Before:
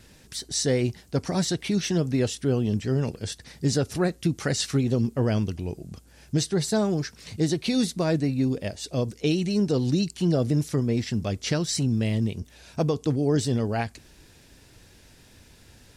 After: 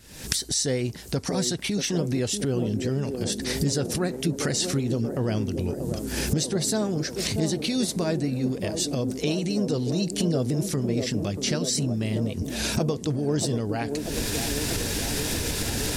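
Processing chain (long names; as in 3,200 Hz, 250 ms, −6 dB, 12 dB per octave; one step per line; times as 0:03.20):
camcorder AGC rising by 73 dB per second
high-shelf EQ 5,200 Hz +7.5 dB
on a send: delay with a band-pass on its return 636 ms, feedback 73%, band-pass 400 Hz, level −5 dB
on the sum: level −3 dB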